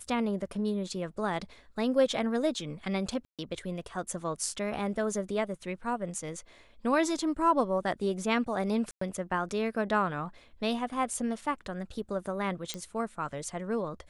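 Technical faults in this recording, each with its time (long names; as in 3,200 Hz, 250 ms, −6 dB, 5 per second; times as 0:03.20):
0:03.25–0:03.39: drop-out 137 ms
0:08.91–0:09.01: drop-out 104 ms
0:12.74: click −19 dBFS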